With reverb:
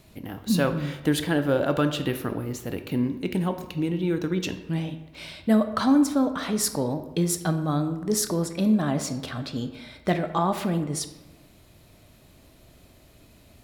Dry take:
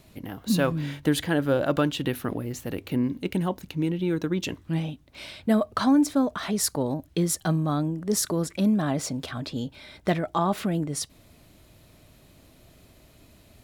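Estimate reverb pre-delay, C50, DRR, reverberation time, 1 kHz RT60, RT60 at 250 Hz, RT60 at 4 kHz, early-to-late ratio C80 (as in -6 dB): 14 ms, 10.5 dB, 8.0 dB, 1.1 s, 1.1 s, 1.2 s, 0.65 s, 12.5 dB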